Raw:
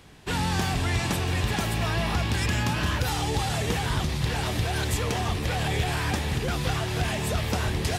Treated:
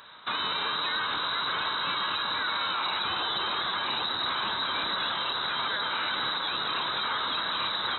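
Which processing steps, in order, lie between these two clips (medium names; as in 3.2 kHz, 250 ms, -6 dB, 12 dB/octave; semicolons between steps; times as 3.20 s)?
treble shelf 2.7 kHz +8.5 dB; frequency inversion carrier 3.9 kHz; high-order bell 1.2 kHz +11 dB 1.1 oct; on a send: feedback echo behind a band-pass 133 ms, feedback 78%, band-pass 460 Hz, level -7.5 dB; on the sum: peak limiter -18 dBFS, peak gain reduction 9.5 dB; high-pass 89 Hz 12 dB/octave; trim -3 dB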